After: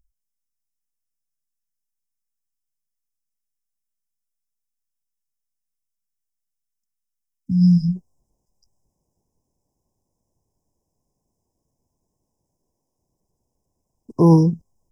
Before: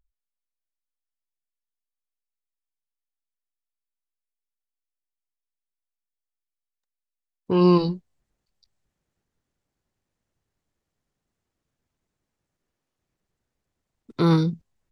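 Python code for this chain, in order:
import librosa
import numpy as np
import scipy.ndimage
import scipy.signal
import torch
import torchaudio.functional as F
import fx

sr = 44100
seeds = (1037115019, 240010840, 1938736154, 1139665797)

y = fx.brickwall_bandstop(x, sr, low_hz=fx.steps((0.0, 260.0), (7.95, 1100.0)), high_hz=4900.0)
y = y * librosa.db_to_amplitude(6.5)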